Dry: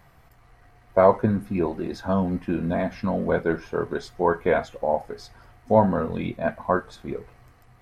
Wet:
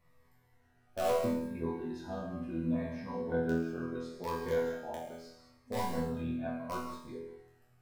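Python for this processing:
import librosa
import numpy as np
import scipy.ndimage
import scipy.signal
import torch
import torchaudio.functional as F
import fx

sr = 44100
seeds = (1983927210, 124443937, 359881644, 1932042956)

p1 = fx.peak_eq(x, sr, hz=4700.0, db=-3.0, octaves=0.26)
p2 = (np.mod(10.0 ** (10.0 / 20.0) * p1 + 1.0, 2.0) - 1.0) / 10.0 ** (10.0 / 20.0)
p3 = p1 + (p2 * librosa.db_to_amplitude(-6.5))
p4 = fx.resonator_bank(p3, sr, root=40, chord='fifth', decay_s=0.73)
p5 = p4 + fx.room_flutter(p4, sr, wall_m=7.6, rt60_s=0.21, dry=0)
p6 = fx.rev_gated(p5, sr, seeds[0], gate_ms=230, shape='flat', drr_db=5.0)
y = fx.notch_cascade(p6, sr, direction='falling', hz=0.73)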